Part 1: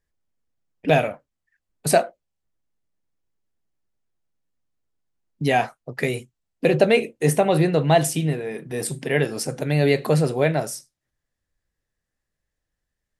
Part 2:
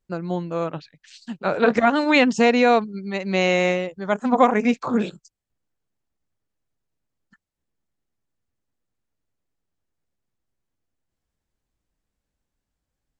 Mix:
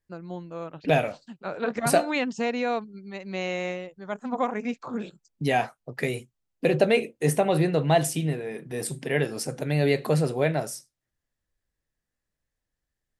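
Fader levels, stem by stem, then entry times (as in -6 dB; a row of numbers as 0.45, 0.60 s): -4.0, -10.5 dB; 0.00, 0.00 s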